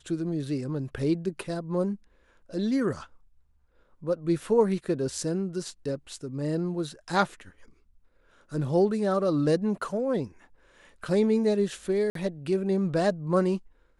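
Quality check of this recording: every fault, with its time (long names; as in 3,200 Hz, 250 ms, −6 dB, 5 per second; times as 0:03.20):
0:12.10–0:12.15: drop-out 53 ms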